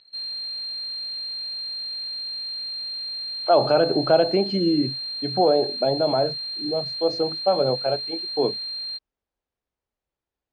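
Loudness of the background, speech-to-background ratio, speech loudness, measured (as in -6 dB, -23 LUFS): -28.5 LUFS, 5.5 dB, -23.0 LUFS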